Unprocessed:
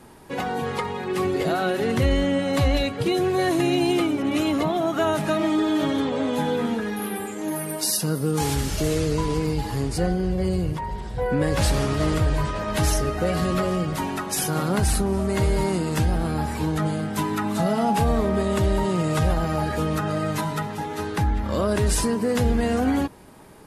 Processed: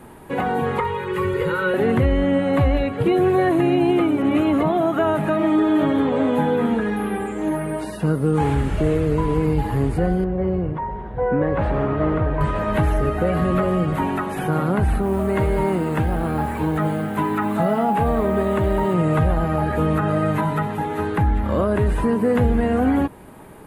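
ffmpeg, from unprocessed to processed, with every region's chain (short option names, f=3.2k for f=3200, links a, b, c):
-filter_complex "[0:a]asettb=1/sr,asplit=3[a][b][c];[a]atrim=end=0.804[d];[b]atrim=start=0.8:end=1.74,asetpts=PTS-STARTPTS,afade=t=in:d=0.004:c=qsin,afade=t=out:st=0.936:d=0.004:c=qsin,asuperstop=centerf=690:order=12:qfactor=2.4,equalizer=f=290:w=1.8:g=-11.5,aecho=1:1:2.1:0.55,atrim=end_sample=41454[e];[c]atrim=start=1.736[f];[d][e]acrossfade=d=0.004:c1=hsin:c2=qsin[g];[g][f]acrossfade=d=0.004:c1=qsin:c2=hsin,asettb=1/sr,asplit=3[h][i][j];[h]atrim=end=6.734[k];[i]atrim=start=6.73:end=8.95,asetpts=PTS-STARTPTS,afade=t=in:d=0.004:c=qsin,afade=t=out:st=2.216:d=0.004:c=qsin,lowpass=f=10k:w=0.5412,lowpass=f=10k:w=1.3066,aeval=exprs='val(0)+0.00447*(sin(2*PI*60*n/s)+sin(2*PI*2*60*n/s)/2+sin(2*PI*3*60*n/s)/3+sin(2*PI*4*60*n/s)/4+sin(2*PI*5*60*n/s)/5)':c=same[l];[j]atrim=start=8.946[m];[k][l]acrossfade=d=0.004:c1=hsin:c2=qsin[n];[n][m]acrossfade=d=0.004:c1=qsin:c2=hsin,asettb=1/sr,asplit=3[o][p][q];[o]atrim=end=10.244[r];[p]atrim=start=10.24:end=12.41,asetpts=PTS-STARTPTS,afade=t=in:d=0.004:c=qsin,afade=t=out:st=2.166:d=0.004:c=qsin,lowpass=1.5k,lowshelf=f=190:g=-8[s];[q]atrim=start=12.406[t];[r][s]acrossfade=d=0.004:c1=hsin:c2=qsin[u];[u][t]acrossfade=d=0.004:c1=qsin:c2=hsin,asettb=1/sr,asplit=3[v][w][x];[v]atrim=end=14.984[y];[w]atrim=start=14.98:end=18.94,asetpts=PTS-STARTPTS,afade=t=in:d=0.004:c=qsin,afade=t=out:st=3.956:d=0.004:c=qsin,lowshelf=f=210:g=-6,acrusher=bits=8:dc=4:mix=0:aa=0.000001[z];[x]atrim=start=18.936[aa];[y][z]acrossfade=d=0.004:c1=hsin:c2=qsin[ab];[ab][aa]acrossfade=d=0.004:c1=qsin:c2=hsin,acrossover=split=2700[ac][ad];[ad]acompressor=threshold=-46dB:ratio=4:attack=1:release=60[ae];[ac][ae]amix=inputs=2:normalize=0,equalizer=f=5.4k:t=o:w=0.97:g=-14.5,alimiter=limit=-15dB:level=0:latency=1:release=384,volume=5.5dB"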